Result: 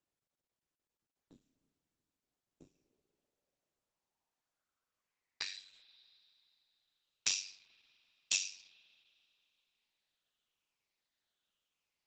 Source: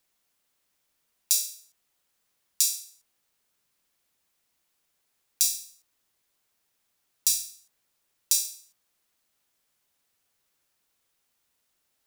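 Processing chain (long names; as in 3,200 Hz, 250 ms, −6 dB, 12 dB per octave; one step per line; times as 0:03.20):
rippled gain that drifts along the octave scale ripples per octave 0.8, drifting −0.89 Hz, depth 12 dB
noise gate −55 dBFS, range −16 dB
ring modulation 48 Hz
soft clipping −8 dBFS, distortion −18 dB
spring reverb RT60 2.8 s, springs 48 ms, chirp 35 ms, DRR 18 dB
low-pass filter sweep 270 Hz → 3,400 Hz, 0:02.50–0:06.01
level +3.5 dB
Opus 12 kbit/s 48,000 Hz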